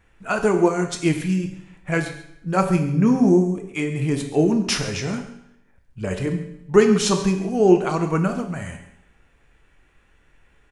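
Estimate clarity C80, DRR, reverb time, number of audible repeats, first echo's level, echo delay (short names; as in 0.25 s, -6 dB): 10.0 dB, 4.5 dB, 0.75 s, 1, -15.5 dB, 0.137 s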